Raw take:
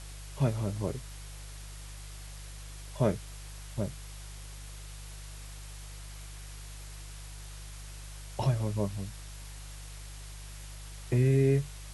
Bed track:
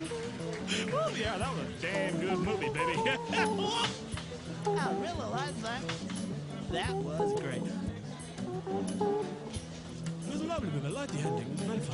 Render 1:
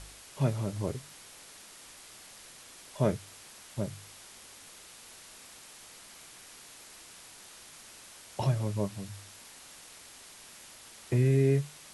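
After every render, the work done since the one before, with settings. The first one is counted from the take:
hum removal 50 Hz, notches 3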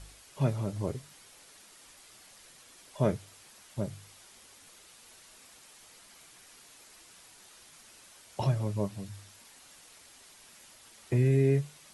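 broadband denoise 6 dB, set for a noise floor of −52 dBFS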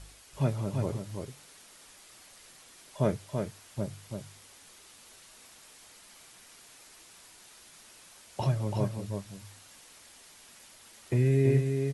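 single-tap delay 334 ms −5.5 dB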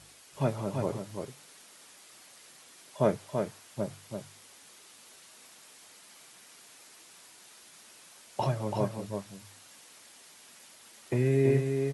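high-pass filter 140 Hz 12 dB per octave
dynamic equaliser 840 Hz, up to +5 dB, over −45 dBFS, Q 0.71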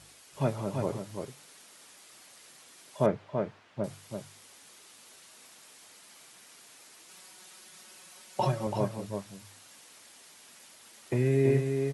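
0:03.06–0:03.84: low-pass filter 2,600 Hz
0:07.08–0:08.67: comb filter 5.4 ms, depth 73%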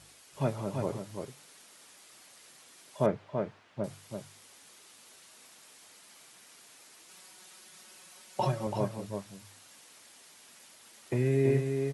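level −1.5 dB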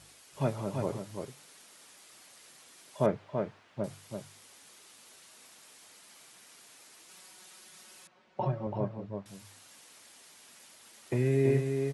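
0:08.07–0:09.26: head-to-tape spacing loss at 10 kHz 41 dB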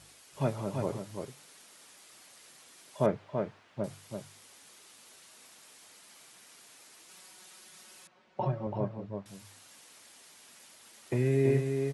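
no processing that can be heard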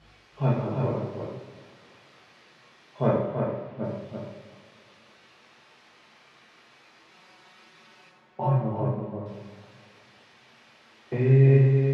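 high-frequency loss of the air 260 metres
coupled-rooms reverb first 0.85 s, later 3 s, from −18 dB, DRR −6 dB

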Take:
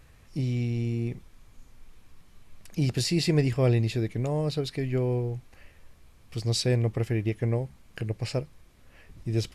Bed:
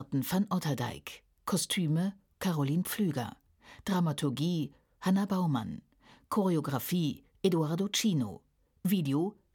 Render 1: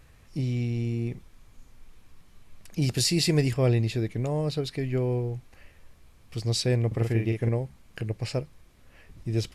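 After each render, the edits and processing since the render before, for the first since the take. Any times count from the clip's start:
0:02.82–0:03.54: high-shelf EQ 4,600 Hz +8.5 dB
0:06.87–0:07.49: double-tracking delay 44 ms −4 dB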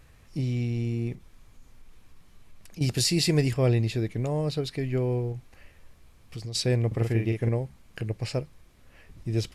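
0:01.15–0:02.81: downward compressor 2 to 1, threshold −44 dBFS
0:05.32–0:06.55: downward compressor, threshold −32 dBFS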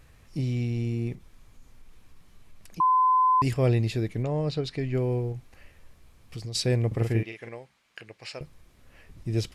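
0:02.80–0:03.42: beep over 1,020 Hz −17.5 dBFS
0:04.22–0:04.93: low-pass filter 4,600 Hz → 8,200 Hz
0:07.23–0:08.41: resonant band-pass 2,600 Hz, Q 0.58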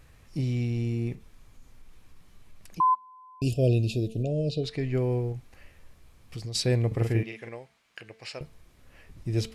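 hum removal 223.1 Hz, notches 20
0:02.94–0:04.64: gain on a spectral selection 720–2,400 Hz −30 dB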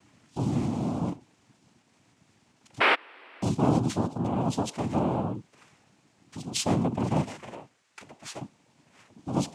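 cochlear-implant simulation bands 4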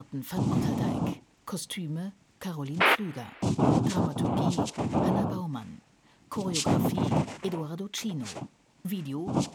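mix in bed −4.5 dB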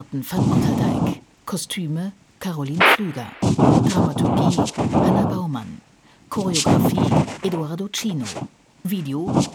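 level +9 dB
brickwall limiter −2 dBFS, peak gain reduction 1.5 dB

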